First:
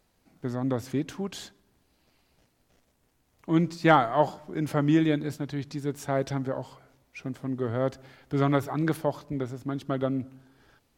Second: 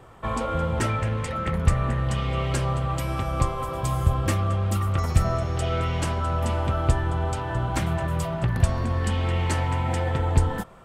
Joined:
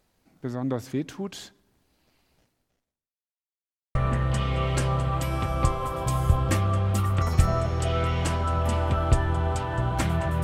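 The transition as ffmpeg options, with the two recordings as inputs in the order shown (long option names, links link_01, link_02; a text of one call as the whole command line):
ffmpeg -i cue0.wav -i cue1.wav -filter_complex "[0:a]apad=whole_dur=10.43,atrim=end=10.43,asplit=2[link_01][link_02];[link_01]atrim=end=3.18,asetpts=PTS-STARTPTS,afade=type=out:start_time=2.37:duration=0.81:curve=qua[link_03];[link_02]atrim=start=3.18:end=3.95,asetpts=PTS-STARTPTS,volume=0[link_04];[1:a]atrim=start=1.72:end=8.2,asetpts=PTS-STARTPTS,afade=type=in:duration=0.004:curve=hsin[link_05];[link_03][link_04][link_05]concat=n=3:v=0:a=1" out.wav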